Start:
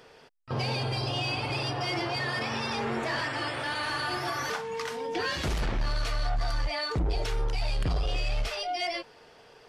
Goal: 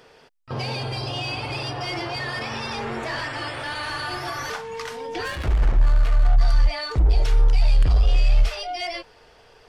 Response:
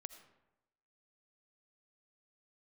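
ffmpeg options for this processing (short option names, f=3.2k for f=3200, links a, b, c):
-filter_complex "[0:a]asettb=1/sr,asplit=3[a][b][c];[a]atrim=end=5.244[d];[b]atrim=start=5.24:end=6.38,asetpts=PTS-STARTPTS,afade=t=in:d=0.004:c=qsin,afade=t=out:st=1.136:d=0.004:c=qsin,adynamicsmooth=sensitivity=6:basefreq=580[e];[c]atrim=start=6.376[f];[d][e]acrossfade=d=0.004:c1=hsin:c2=qsin[g];[g][f]acrossfade=d=0.004:c1=qsin:c2=hsin,asubboost=boost=4:cutoff=84,volume=2dB"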